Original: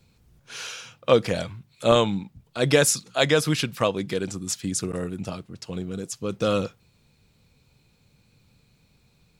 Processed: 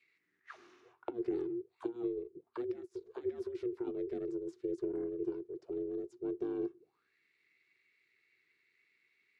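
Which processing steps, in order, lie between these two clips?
band shelf 500 Hz -11 dB; notch 3000 Hz, Q 6; negative-ratio compressor -28 dBFS, ratio -0.5; ring modulator 240 Hz; auto-wah 350–2400 Hz, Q 7, down, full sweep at -35.5 dBFS; gain +5.5 dB

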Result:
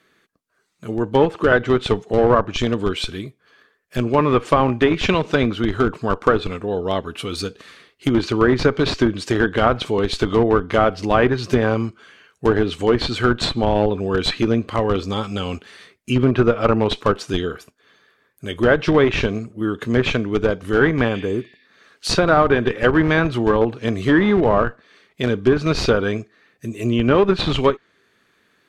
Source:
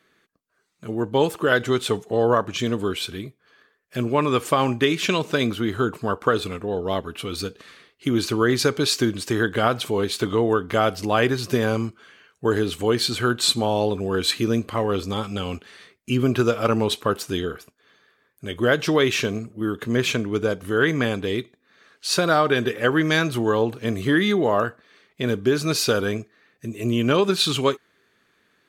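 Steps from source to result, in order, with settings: in parallel at -4 dB: Schmitt trigger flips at -16.5 dBFS; on the sum: treble ducked by the level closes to 2000 Hz, closed at -14 dBFS; spectral repair 21.16–21.66, 1700–5700 Hz both; gain +3 dB

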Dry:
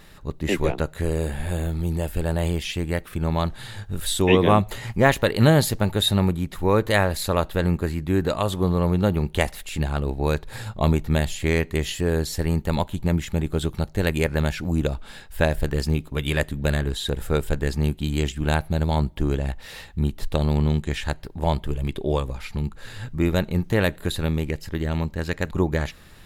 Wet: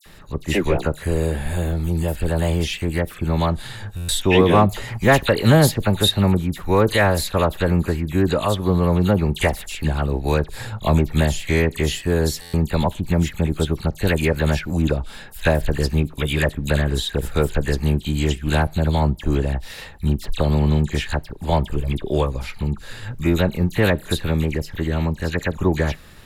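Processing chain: dispersion lows, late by 62 ms, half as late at 2400 Hz; in parallel at -6 dB: overloaded stage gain 13.5 dB; on the sum: stuck buffer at 3.96/12.41, samples 512, times 10

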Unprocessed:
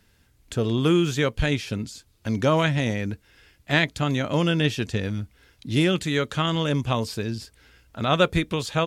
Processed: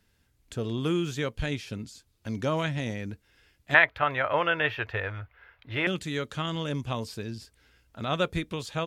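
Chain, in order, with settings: 3.74–5.87 EQ curve 110 Hz 0 dB, 200 Hz -16 dB, 580 Hz +9 dB, 1300 Hz +14 dB, 1800 Hz +13 dB, 2700 Hz +6 dB, 8600 Hz -28 dB, 13000 Hz -6 dB; gain -7.5 dB

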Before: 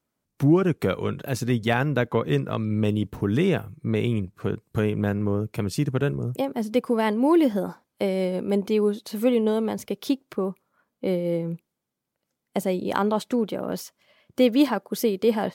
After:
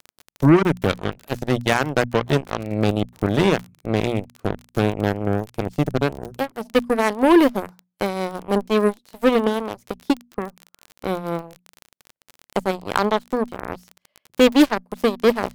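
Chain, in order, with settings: added harmonics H 7 -16 dB, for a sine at -9 dBFS; notches 60/120/180/240 Hz; crackle 31/s -31 dBFS; gain +4.5 dB

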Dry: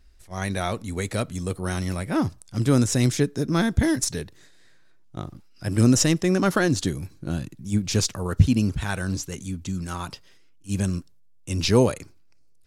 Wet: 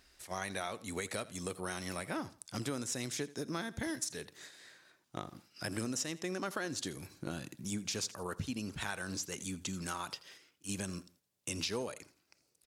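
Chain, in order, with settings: HPF 560 Hz 6 dB/oct; compressor 5:1, threshold -42 dBFS, peak gain reduction 21.5 dB; on a send: feedback echo 83 ms, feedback 29%, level -19 dB; on the sum: gain +5 dB

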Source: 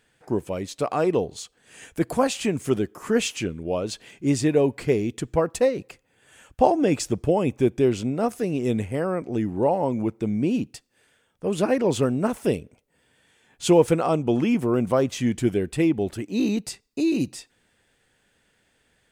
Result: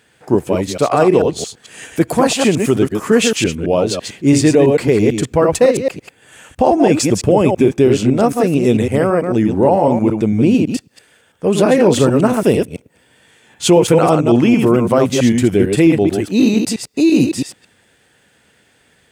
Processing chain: reverse delay 0.111 s, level -5 dB; HPF 74 Hz; maximiser +11.5 dB; gain -1 dB

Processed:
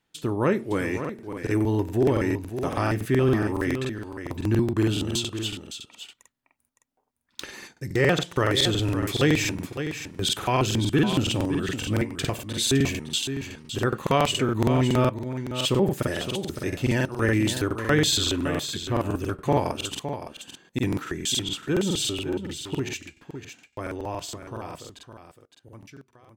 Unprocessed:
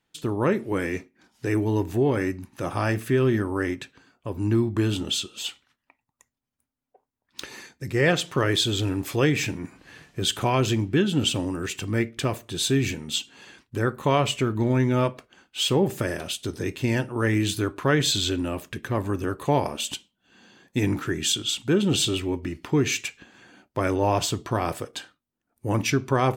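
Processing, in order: ending faded out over 7.17 s; echo 0.562 s -9.5 dB; crackling interface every 0.14 s, samples 2048, repeat, from 1

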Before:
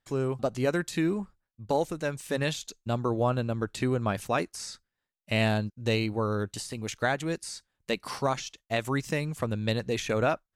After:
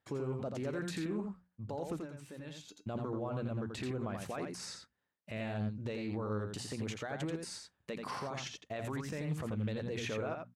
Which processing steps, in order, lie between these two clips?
HPF 76 Hz 12 dB/oct; high shelf 3200 Hz -11.5 dB; notches 60/120/180/240 Hz; limiter -33 dBFS, peak gain reduction 18.5 dB; 1.98–2.84 resonator 300 Hz, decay 0.17 s, harmonics odd, mix 70%; echo 85 ms -5 dB; Doppler distortion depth 0.19 ms; gain +2 dB

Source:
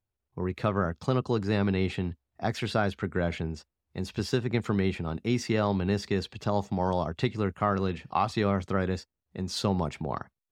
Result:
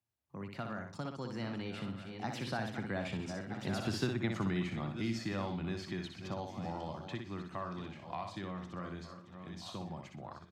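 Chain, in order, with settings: regenerating reverse delay 0.686 s, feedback 45%, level -12 dB; Doppler pass-by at 3.9, 29 m/s, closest 17 m; in parallel at 0 dB: compressor, threshold -41 dBFS, peak gain reduction 18.5 dB; on the sum: HPF 110 Hz; bell 440 Hz -9.5 dB 0.36 oct; on a send: feedback echo 61 ms, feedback 25%, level -6 dB; on the sum: three-band squash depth 40%; gain -3.5 dB

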